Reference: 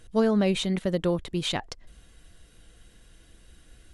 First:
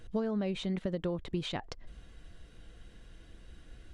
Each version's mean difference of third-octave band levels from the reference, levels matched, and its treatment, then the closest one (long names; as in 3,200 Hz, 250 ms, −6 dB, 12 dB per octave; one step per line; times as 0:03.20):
4.0 dB: high-shelf EQ 4,500 Hz +5.5 dB
downward compressor 8 to 1, threshold −31 dBFS, peak gain reduction 13 dB
head-to-tape spacing loss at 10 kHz 20 dB
level +2 dB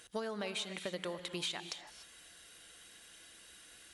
10.0 dB: high-pass filter 1,400 Hz 6 dB per octave
downward compressor 8 to 1, threshold −42 dBFS, peak gain reduction 15.5 dB
reverb whose tail is shaped and stops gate 320 ms rising, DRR 9 dB
level +5.5 dB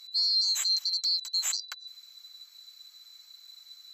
16.5 dB: neighbouring bands swapped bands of 4,000 Hz
high-pass filter 930 Hz 24 dB per octave
brickwall limiter −19 dBFS, peak gain reduction 6.5 dB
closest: first